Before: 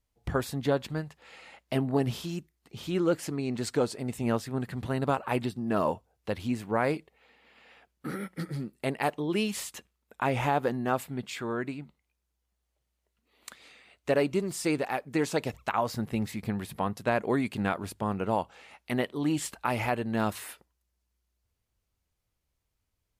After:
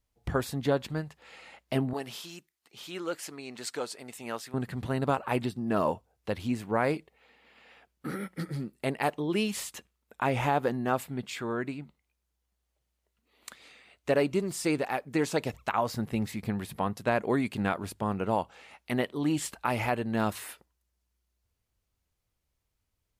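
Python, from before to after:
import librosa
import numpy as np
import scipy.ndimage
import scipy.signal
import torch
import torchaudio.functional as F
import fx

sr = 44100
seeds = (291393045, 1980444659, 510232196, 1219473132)

y = fx.highpass(x, sr, hz=1100.0, slope=6, at=(1.93, 4.54))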